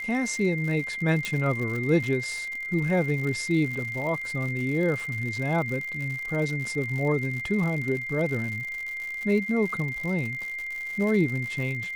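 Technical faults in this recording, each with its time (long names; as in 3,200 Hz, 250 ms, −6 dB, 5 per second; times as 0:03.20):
surface crackle 110 per second −32 dBFS
whistle 2,100 Hz −31 dBFS
0:01.25: click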